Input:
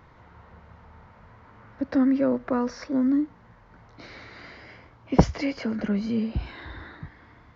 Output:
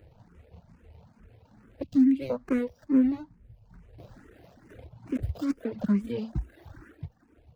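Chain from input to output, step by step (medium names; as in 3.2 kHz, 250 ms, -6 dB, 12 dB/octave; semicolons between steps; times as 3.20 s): median filter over 41 samples; 1.82–2.30 s: high-order bell 880 Hz -15.5 dB 2.3 oct; reverb removal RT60 1.1 s; 2.91–4.20 s: bass shelf 97 Hz +10 dB; 4.70–5.54 s: compressor with a negative ratio -31 dBFS, ratio -1; barber-pole phaser +2.3 Hz; trim +3.5 dB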